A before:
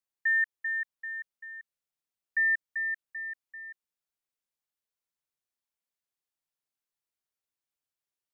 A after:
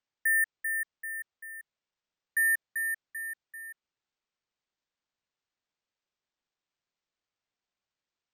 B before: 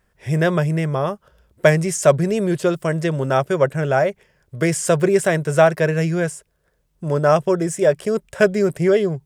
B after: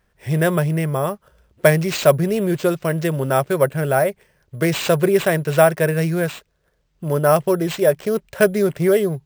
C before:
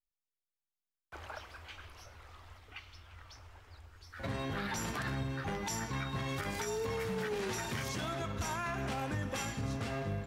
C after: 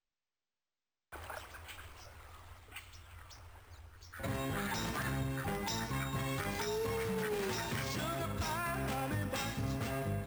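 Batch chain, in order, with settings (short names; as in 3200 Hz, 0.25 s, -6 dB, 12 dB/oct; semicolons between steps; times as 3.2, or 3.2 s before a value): careless resampling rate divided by 4×, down none, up hold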